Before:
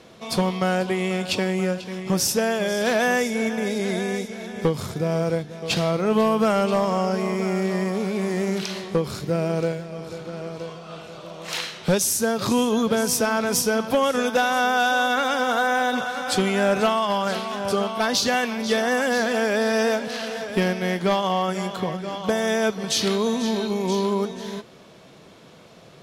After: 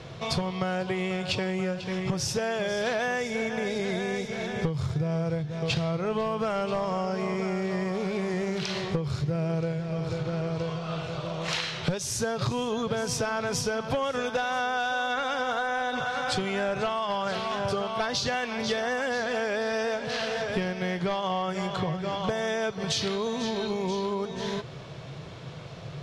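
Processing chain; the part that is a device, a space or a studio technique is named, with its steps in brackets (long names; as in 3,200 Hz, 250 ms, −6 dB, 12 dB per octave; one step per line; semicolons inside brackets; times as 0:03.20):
jukebox (low-pass filter 5,800 Hz 12 dB per octave; low shelf with overshoot 170 Hz +7 dB, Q 3; downward compressor 5 to 1, threshold −31 dBFS, peak gain reduction 16 dB)
level +4.5 dB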